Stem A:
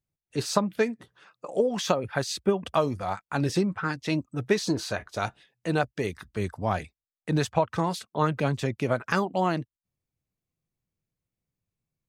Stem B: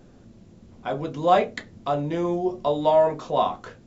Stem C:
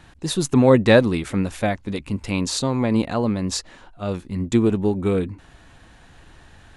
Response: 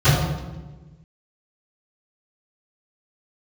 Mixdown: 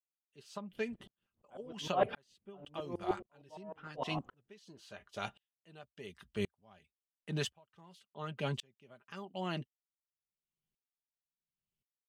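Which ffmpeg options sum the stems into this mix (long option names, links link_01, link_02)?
-filter_complex "[0:a]aecho=1:1:5:0.41,volume=-6dB[link_01];[1:a]lowpass=1600,aeval=exprs='val(0)*pow(10,-28*if(lt(mod(-6.5*n/s,1),2*abs(-6.5)/1000),1-mod(-6.5*n/s,1)/(2*abs(-6.5)/1000),(mod(-6.5*n/s,1)-2*abs(-6.5)/1000)/(1-2*abs(-6.5)/1000))/20)':channel_layout=same,adelay=650,volume=0dB[link_02];[link_01][link_02]amix=inputs=2:normalize=0,equalizer=frequency=3000:width_type=o:width=0.34:gain=13.5,aeval=exprs='val(0)*pow(10,-38*if(lt(mod(-0.93*n/s,1),2*abs(-0.93)/1000),1-mod(-0.93*n/s,1)/(2*abs(-0.93)/1000),(mod(-0.93*n/s,1)-2*abs(-0.93)/1000)/(1-2*abs(-0.93)/1000))/20)':channel_layout=same"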